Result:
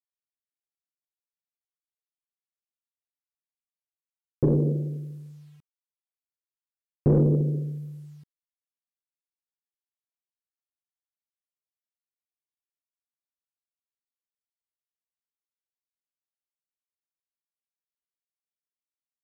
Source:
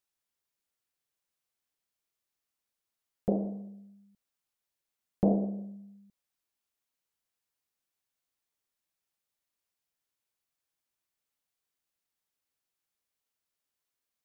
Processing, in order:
mid-hump overdrive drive 20 dB, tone 1,100 Hz, clips at −14 dBFS
in parallel at +3 dB: brickwall limiter −22.5 dBFS, peak gain reduction 7.5 dB
on the sum: tilt shelving filter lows +7 dB, about 900 Hz
bit reduction 10 bits
wrong playback speed 45 rpm record played at 33 rpm
level −6 dB

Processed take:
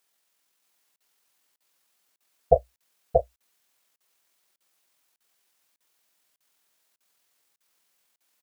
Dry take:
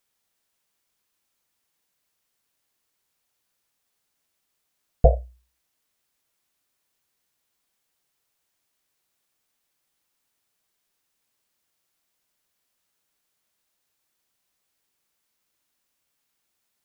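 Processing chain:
high-pass filter 370 Hz 6 dB per octave
tempo change 2×
single-tap delay 632 ms −3 dB
regular buffer underruns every 0.60 s, samples 2,048, zero, from 0:00.96
level +4.5 dB

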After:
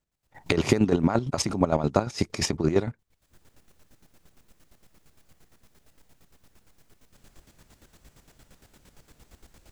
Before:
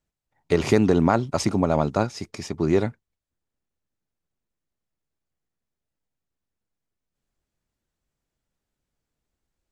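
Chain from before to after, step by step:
camcorder AGC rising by 60 dB per second
square-wave tremolo 8.7 Hz, depth 65%, duty 35%

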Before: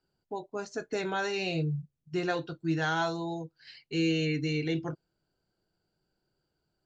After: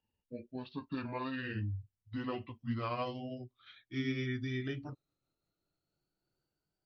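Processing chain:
pitch glide at a constant tempo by −9 semitones ending unshifted
level −6 dB

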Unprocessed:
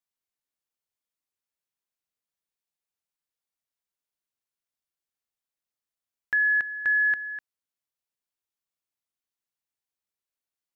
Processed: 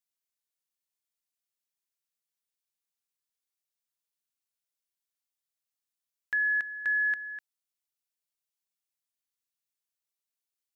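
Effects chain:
high-shelf EQ 2,200 Hz +10.5 dB
level −8.5 dB

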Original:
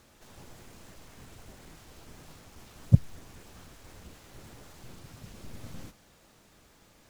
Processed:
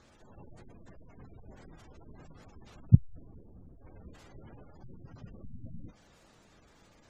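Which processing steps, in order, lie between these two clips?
gate on every frequency bin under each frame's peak −20 dB strong
0:02.94–0:03.78: low-pass that shuts in the quiet parts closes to 360 Hz, open at −17 dBFS

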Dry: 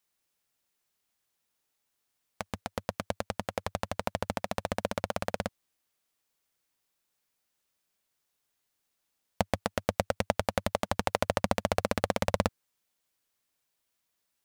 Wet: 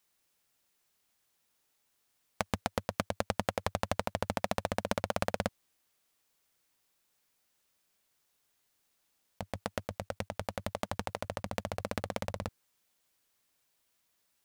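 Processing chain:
compressor whose output falls as the input rises −33 dBFS, ratio −1

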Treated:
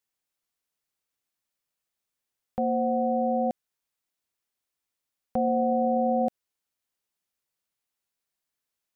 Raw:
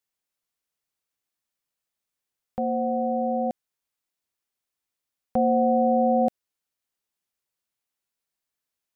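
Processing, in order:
brickwall limiter −17 dBFS, peak gain reduction 4.5 dB

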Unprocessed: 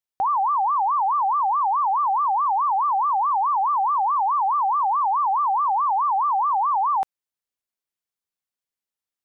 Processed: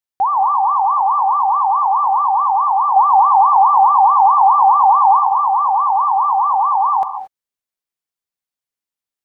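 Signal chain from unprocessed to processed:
0:02.96–0:05.19: parametric band 470 Hz +8 dB 2 octaves
reverb whose tail is shaped and stops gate 250 ms rising, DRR 8 dB
dynamic equaliser 770 Hz, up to +8 dB, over −32 dBFS, Q 1.2

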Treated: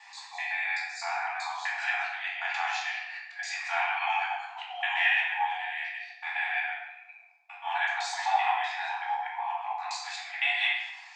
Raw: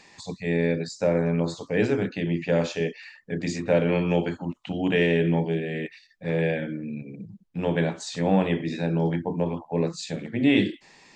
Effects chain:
reversed piece by piece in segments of 127 ms
linear-phase brick-wall high-pass 690 Hz
high-shelf EQ 3,900 Hz −10 dB
rectangular room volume 470 cubic metres, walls mixed, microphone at 2.4 metres
level +1 dB

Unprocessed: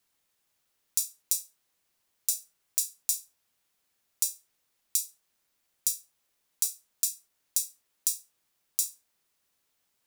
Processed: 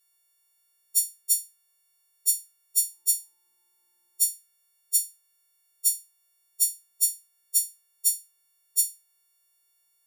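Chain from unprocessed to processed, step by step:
every partial snapped to a pitch grid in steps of 4 semitones
0:02.79–0:04.30: hollow resonant body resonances 360/910 Hz, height 15 dB, ringing for 40 ms
level −7 dB

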